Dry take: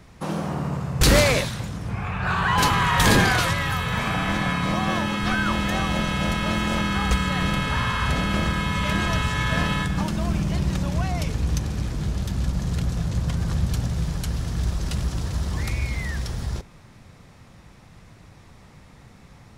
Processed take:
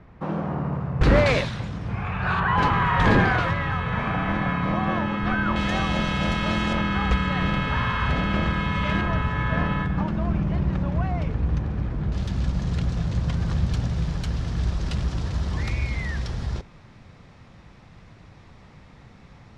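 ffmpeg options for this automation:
-af "asetnsamples=n=441:p=0,asendcmd='1.26 lowpass f 3800;2.4 lowpass f 2000;5.56 lowpass f 5100;6.73 lowpass f 3000;9.01 lowpass f 1800;12.12 lowpass f 4700',lowpass=1.8k"

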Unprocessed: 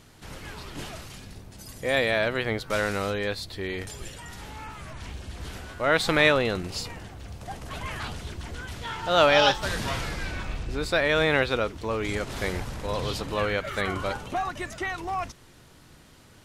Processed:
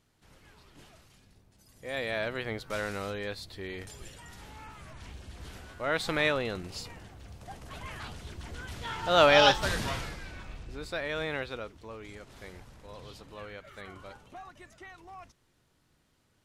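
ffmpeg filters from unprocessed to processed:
-af "afade=t=in:st=1.7:d=0.49:silence=0.316228,afade=t=in:st=8.18:d=1.43:silence=0.421697,afade=t=out:st=9.61:d=0.6:silence=0.281838,afade=t=out:st=11.22:d=0.94:silence=0.473151"

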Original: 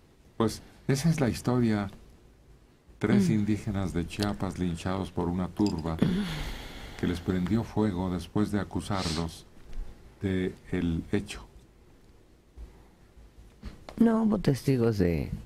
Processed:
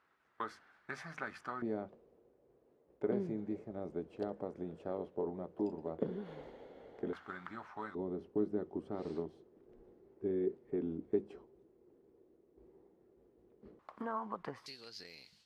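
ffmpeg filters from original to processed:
-af "asetnsamples=n=441:p=0,asendcmd='1.62 bandpass f 490;7.13 bandpass f 1300;7.95 bandpass f 400;13.79 bandpass f 1100;14.66 bandpass f 4400',bandpass=f=1.4k:t=q:w=3.1:csg=0"

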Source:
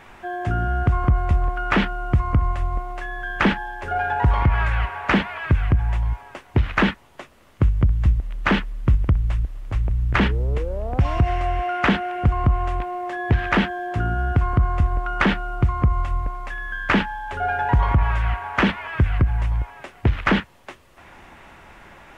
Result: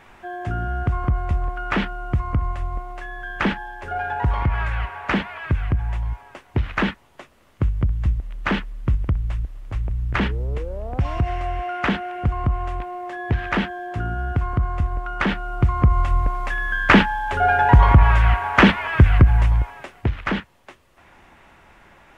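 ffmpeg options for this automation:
-af "volume=6dB,afade=t=in:st=15.26:d=1.18:silence=0.354813,afade=t=out:st=19.37:d=0.78:silence=0.281838"

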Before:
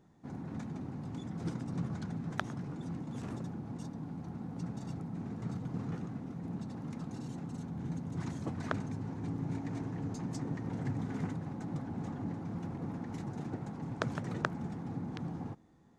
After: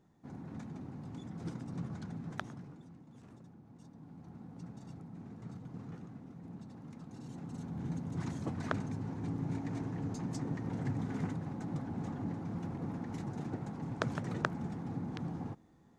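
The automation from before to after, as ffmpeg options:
-af "volume=11dB,afade=t=out:st=2.32:d=0.58:silence=0.281838,afade=t=in:st=3.72:d=0.64:silence=0.446684,afade=t=in:st=7.08:d=0.71:silence=0.398107"

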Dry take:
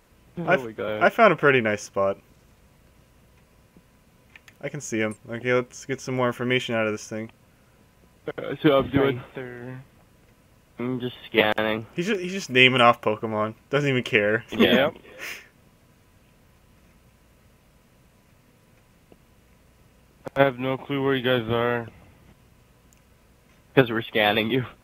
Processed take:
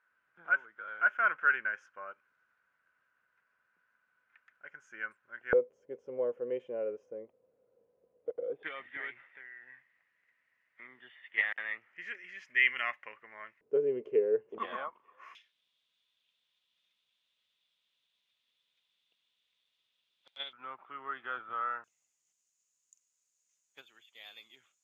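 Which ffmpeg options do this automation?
-af "asetnsamples=n=441:p=0,asendcmd='5.53 bandpass f 490;8.63 bandpass f 1900;13.61 bandpass f 430;14.58 bandpass f 1100;15.35 bandpass f 3500;20.53 bandpass f 1300;21.84 bandpass f 6800',bandpass=f=1.5k:t=q:w=10:csg=0"

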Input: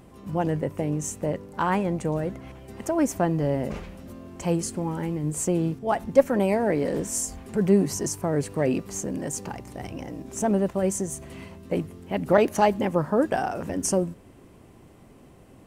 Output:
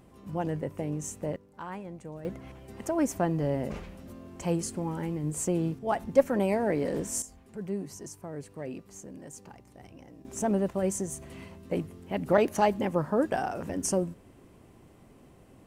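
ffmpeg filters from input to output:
-af "asetnsamples=n=441:p=0,asendcmd='1.36 volume volume -15.5dB;2.25 volume volume -4dB;7.22 volume volume -14.5dB;10.25 volume volume -4dB',volume=-6dB"

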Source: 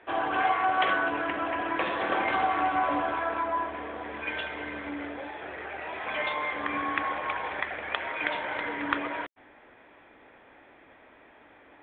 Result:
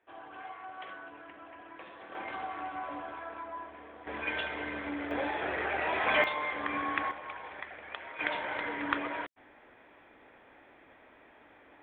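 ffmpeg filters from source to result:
-af "asetnsamples=n=441:p=0,asendcmd='2.15 volume volume -12.5dB;4.07 volume volume -1dB;5.11 volume volume 5.5dB;6.24 volume volume -3dB;7.11 volume volume -11dB;8.19 volume volume -3dB',volume=-19.5dB"

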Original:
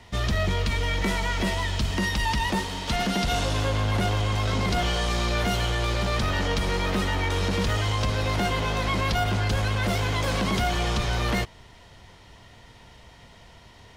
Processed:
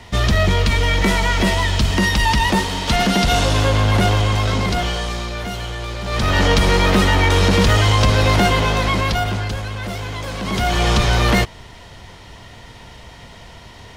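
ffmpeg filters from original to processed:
-af "volume=33dB,afade=t=out:st=4.08:d=1.23:silence=0.298538,afade=t=in:st=6.03:d=0.4:silence=0.237137,afade=t=out:st=8.3:d=1.33:silence=0.237137,afade=t=in:st=10.39:d=0.53:silence=0.266073"

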